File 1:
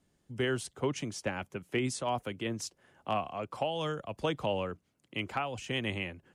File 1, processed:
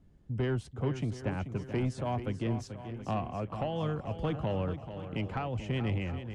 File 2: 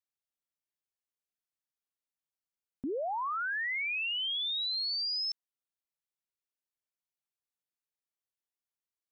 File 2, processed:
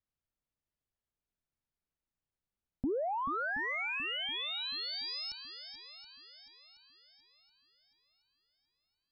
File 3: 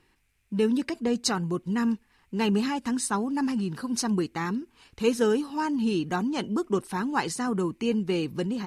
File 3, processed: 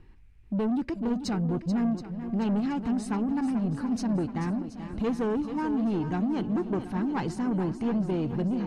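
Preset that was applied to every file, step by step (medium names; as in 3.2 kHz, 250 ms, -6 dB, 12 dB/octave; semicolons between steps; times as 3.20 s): RIAA curve playback; in parallel at +1 dB: compression 4:1, threshold -36 dBFS; on the sum: saturation -18 dBFS; shuffle delay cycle 725 ms, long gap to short 1.5:1, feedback 40%, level -10.5 dB; trim -5.5 dB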